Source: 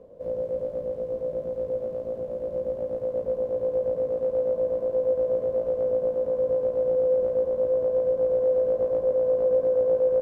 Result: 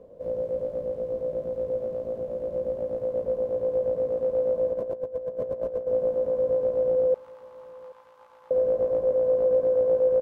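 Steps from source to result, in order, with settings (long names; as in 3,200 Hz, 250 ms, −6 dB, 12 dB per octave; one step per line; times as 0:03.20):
0:04.73–0:05.87: compressor whose output falls as the input rises −30 dBFS, ratio −0.5
0:07.14–0:08.51: Chebyshev high-pass with heavy ripple 830 Hz, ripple 3 dB
repeating echo 779 ms, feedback 35%, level −22.5 dB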